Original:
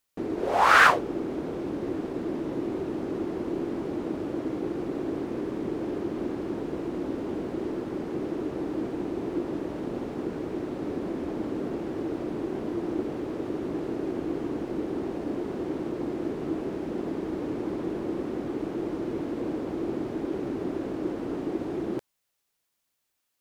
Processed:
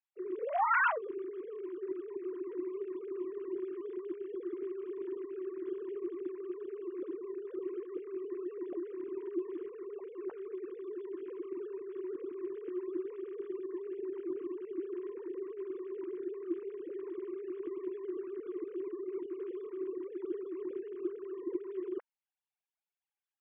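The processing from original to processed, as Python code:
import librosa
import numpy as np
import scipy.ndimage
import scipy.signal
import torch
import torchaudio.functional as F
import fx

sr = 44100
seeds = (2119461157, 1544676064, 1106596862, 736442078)

y = fx.sine_speech(x, sr)
y = y * librosa.db_to_amplitude(-9.0)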